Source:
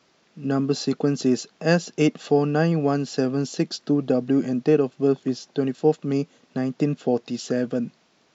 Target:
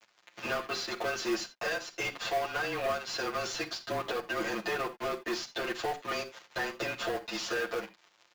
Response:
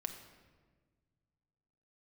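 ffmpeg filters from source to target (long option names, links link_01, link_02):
-filter_complex "[0:a]highpass=780,aecho=1:1:5.6:0.8,acompressor=threshold=-42dB:ratio=10,aeval=exprs='sgn(val(0))*max(abs(val(0))-0.00168,0)':channel_layout=same,afreqshift=-28,asplit=2[link_01][link_02];[link_02]highpass=frequency=720:poles=1,volume=28dB,asoftclip=type=tanh:threshold=-27.5dB[link_03];[link_01][link_03]amix=inputs=2:normalize=0,lowpass=frequency=2400:poles=1,volume=-6dB,aresample=16000,aresample=44100,asplit=2[link_04][link_05];[1:a]atrim=start_sample=2205,atrim=end_sample=3969,adelay=9[link_06];[link_05][link_06]afir=irnorm=-1:irlink=0,volume=4.5dB[link_07];[link_04][link_07]amix=inputs=2:normalize=0,acrusher=bits=5:mode=log:mix=0:aa=0.000001"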